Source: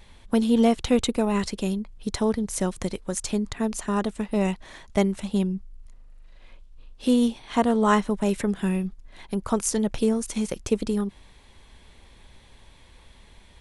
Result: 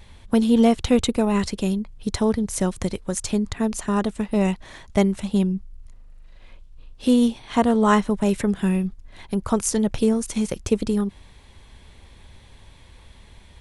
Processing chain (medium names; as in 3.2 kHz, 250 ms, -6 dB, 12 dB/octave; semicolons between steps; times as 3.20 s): peaking EQ 90 Hz +6 dB 1.5 oct; trim +2 dB